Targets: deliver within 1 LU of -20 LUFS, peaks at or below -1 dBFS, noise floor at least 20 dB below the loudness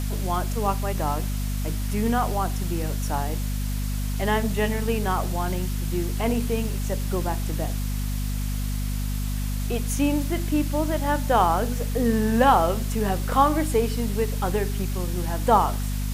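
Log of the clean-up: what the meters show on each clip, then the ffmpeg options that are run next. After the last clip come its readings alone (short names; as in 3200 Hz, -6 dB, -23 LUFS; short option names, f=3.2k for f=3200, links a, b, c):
hum 50 Hz; harmonics up to 250 Hz; hum level -24 dBFS; noise floor -27 dBFS; noise floor target -45 dBFS; loudness -25.0 LUFS; peak -4.0 dBFS; loudness target -20.0 LUFS
-> -af "bandreject=f=50:t=h:w=4,bandreject=f=100:t=h:w=4,bandreject=f=150:t=h:w=4,bandreject=f=200:t=h:w=4,bandreject=f=250:t=h:w=4"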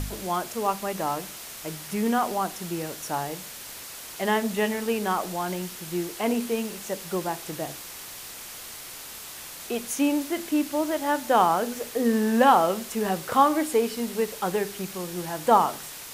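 hum none; noise floor -41 dBFS; noise floor target -46 dBFS
-> -af "afftdn=nr=6:nf=-41"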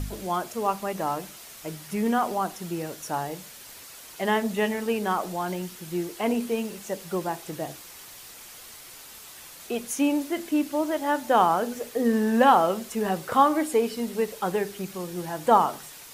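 noise floor -45 dBFS; noise floor target -46 dBFS
-> -af "afftdn=nr=6:nf=-45"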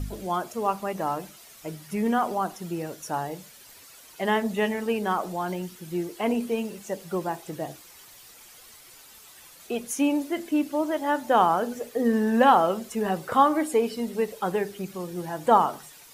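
noise floor -50 dBFS; loudness -26.0 LUFS; peak -5.0 dBFS; loudness target -20.0 LUFS
-> -af "volume=6dB,alimiter=limit=-1dB:level=0:latency=1"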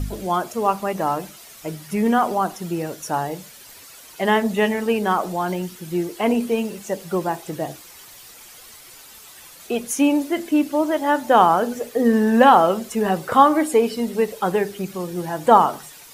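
loudness -20.5 LUFS; peak -1.0 dBFS; noise floor -44 dBFS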